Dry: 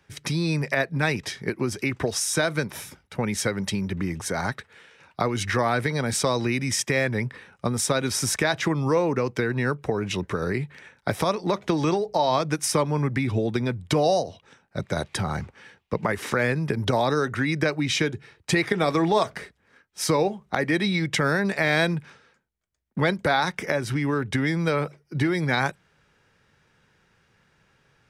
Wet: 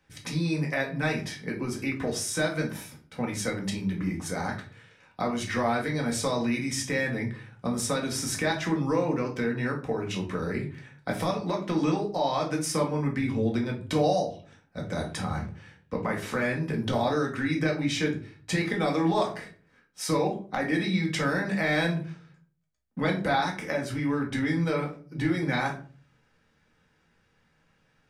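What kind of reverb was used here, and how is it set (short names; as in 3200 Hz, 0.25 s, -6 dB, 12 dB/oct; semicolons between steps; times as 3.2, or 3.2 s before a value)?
shoebox room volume 280 m³, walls furnished, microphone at 2 m; gain -8 dB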